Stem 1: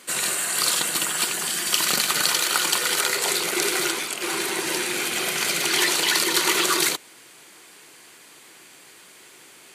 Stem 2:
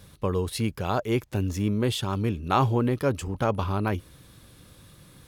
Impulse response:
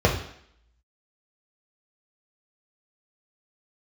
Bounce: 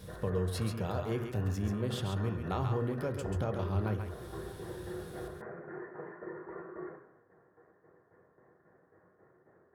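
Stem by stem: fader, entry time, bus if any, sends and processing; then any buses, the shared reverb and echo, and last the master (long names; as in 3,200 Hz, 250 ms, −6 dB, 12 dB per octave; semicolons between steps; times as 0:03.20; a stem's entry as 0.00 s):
−17.0 dB, 0.00 s, send −10.5 dB, no echo send, Chebyshev low-pass filter 1,800 Hz, order 6; downward compressor 4 to 1, threshold −33 dBFS, peak gain reduction 11.5 dB; shaped tremolo saw down 3.7 Hz, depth 75%
−2.5 dB, 0.00 s, send −23.5 dB, echo send −5 dB, downward compressor 2.5 to 1, threshold −39 dBFS, peak gain reduction 14.5 dB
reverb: on, RT60 0.65 s, pre-delay 3 ms
echo: single-tap delay 136 ms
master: no processing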